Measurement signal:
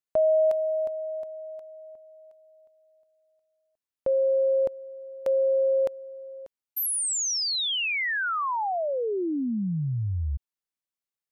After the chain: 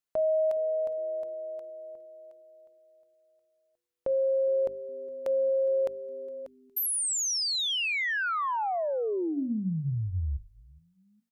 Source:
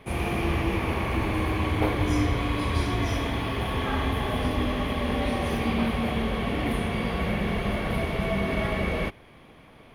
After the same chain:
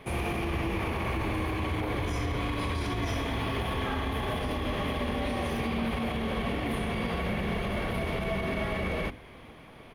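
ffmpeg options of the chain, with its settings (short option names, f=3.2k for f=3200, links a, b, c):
-filter_complex "[0:a]bandreject=f=50:t=h:w=6,bandreject=f=100:t=h:w=6,bandreject=f=150:t=h:w=6,bandreject=f=200:t=h:w=6,bandreject=f=250:t=h:w=6,bandreject=f=300:t=h:w=6,asplit=2[a][b];[b]acompressor=threshold=-39dB:ratio=6:attack=66:release=24:knee=6:detection=peak,volume=3dB[c];[a][c]amix=inputs=2:normalize=0,alimiter=limit=-16dB:level=0:latency=1:release=43,asplit=3[d][e][f];[e]adelay=412,afreqshift=-140,volume=-24dB[g];[f]adelay=824,afreqshift=-280,volume=-34.5dB[h];[d][g][h]amix=inputs=3:normalize=0,volume=-6dB"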